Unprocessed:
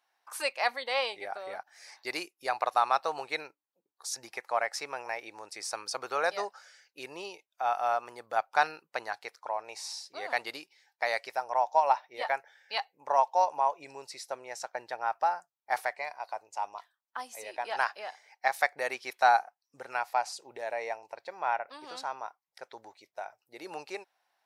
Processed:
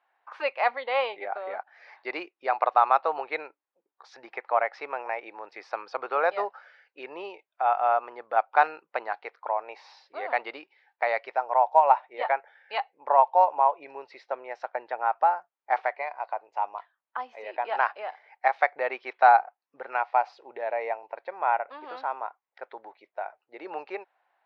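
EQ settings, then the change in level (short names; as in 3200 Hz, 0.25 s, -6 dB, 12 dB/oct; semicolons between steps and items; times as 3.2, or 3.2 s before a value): BPF 360–2700 Hz; air absorption 260 m; dynamic EQ 1700 Hz, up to -4 dB, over -51 dBFS, Q 4.7; +7.0 dB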